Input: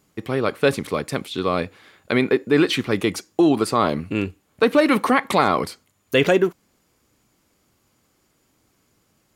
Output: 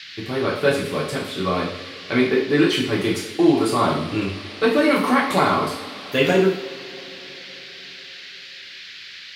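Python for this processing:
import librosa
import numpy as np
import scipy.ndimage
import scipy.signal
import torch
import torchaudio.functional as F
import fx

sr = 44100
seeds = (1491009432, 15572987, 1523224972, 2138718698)

y = fx.rev_double_slope(x, sr, seeds[0], early_s=0.56, late_s=4.6, knee_db=-22, drr_db=-5.0)
y = fx.dmg_noise_band(y, sr, seeds[1], low_hz=1600.0, high_hz=4700.0, level_db=-33.0)
y = F.gain(torch.from_numpy(y), -6.0).numpy()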